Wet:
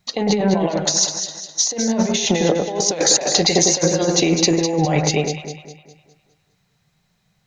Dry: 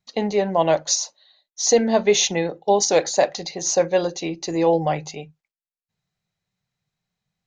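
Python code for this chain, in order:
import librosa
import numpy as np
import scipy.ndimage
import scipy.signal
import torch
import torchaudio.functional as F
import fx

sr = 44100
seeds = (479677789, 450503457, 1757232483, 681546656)

y = fx.over_compress(x, sr, threshold_db=-28.0, ratio=-1.0)
y = fx.echo_alternate(y, sr, ms=102, hz=2000.0, feedback_pct=64, wet_db=-4.0)
y = y * librosa.db_to_amplitude(8.0)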